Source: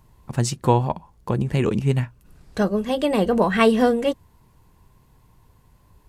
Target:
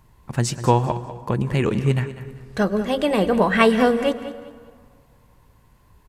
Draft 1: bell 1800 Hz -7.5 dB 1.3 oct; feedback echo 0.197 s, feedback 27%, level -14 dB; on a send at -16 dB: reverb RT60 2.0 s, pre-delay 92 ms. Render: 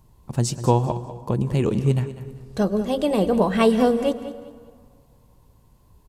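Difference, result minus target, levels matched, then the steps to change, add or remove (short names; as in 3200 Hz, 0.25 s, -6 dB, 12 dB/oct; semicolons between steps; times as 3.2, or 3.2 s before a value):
2000 Hz band -8.5 dB
change: bell 1800 Hz +4 dB 1.3 oct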